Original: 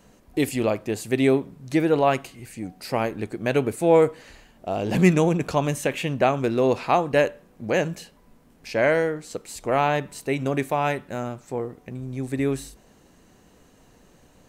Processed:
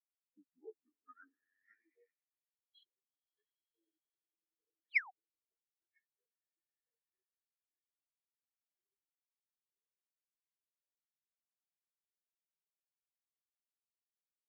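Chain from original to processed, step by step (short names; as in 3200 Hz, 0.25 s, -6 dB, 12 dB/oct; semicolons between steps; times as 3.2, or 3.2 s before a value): delay-line pitch shifter -7 st; Doppler pass-by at 3.67, 9 m/s, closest 8.2 m; bell 470 Hz +10.5 dB 2 oct; compressor 3:1, threshold -36 dBFS, peak gain reduction 22 dB; on a send: swelling echo 92 ms, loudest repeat 8, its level -10 dB; on the sum: band-pass sweep 750 Hz -> 4100 Hz, 0.46–2.69; painted sound fall, 4.85–5.11, 670–5800 Hz -43 dBFS; bell 2200 Hz +13 dB 0.67 oct; careless resampling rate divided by 6×, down filtered, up hold; spectral expander 4:1; gain +5.5 dB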